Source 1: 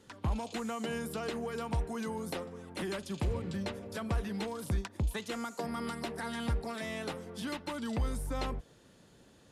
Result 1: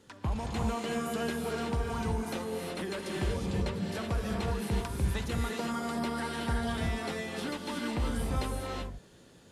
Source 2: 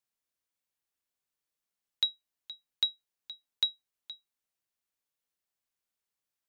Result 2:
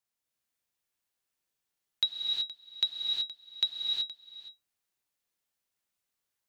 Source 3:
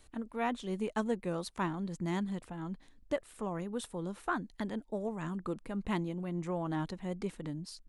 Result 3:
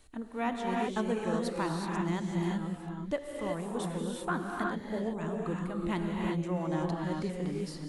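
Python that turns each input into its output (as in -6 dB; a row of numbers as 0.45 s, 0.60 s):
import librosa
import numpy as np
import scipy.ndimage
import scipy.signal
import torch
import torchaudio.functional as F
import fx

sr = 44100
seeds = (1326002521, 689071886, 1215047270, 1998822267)

y = fx.rev_gated(x, sr, seeds[0], gate_ms=400, shape='rising', drr_db=-1.0)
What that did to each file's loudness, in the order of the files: +3.5 LU, +1.0 LU, +3.5 LU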